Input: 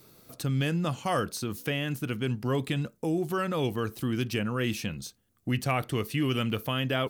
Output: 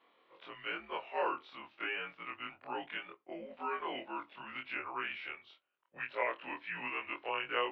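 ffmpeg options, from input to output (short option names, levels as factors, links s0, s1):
-af "afftfilt=real='re':imag='-im':win_size=2048:overlap=0.75,asetrate=40517,aresample=44100,highpass=f=580:t=q:w=0.5412,highpass=f=580:t=q:w=1.307,lowpass=f=3100:t=q:w=0.5176,lowpass=f=3100:t=q:w=0.7071,lowpass=f=3100:t=q:w=1.932,afreqshift=-100,volume=1.12"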